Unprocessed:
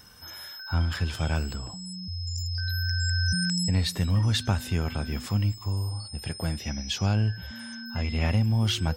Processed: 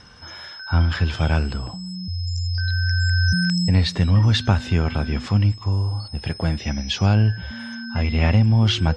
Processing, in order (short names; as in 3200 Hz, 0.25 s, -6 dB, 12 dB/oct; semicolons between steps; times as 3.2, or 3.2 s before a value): Bessel low-pass 4400 Hz, order 4; gain +7.5 dB